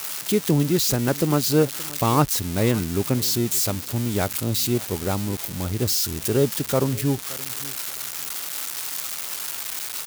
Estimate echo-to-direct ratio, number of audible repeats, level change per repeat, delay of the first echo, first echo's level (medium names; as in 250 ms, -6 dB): -20.5 dB, 2, -13.5 dB, 572 ms, -20.5 dB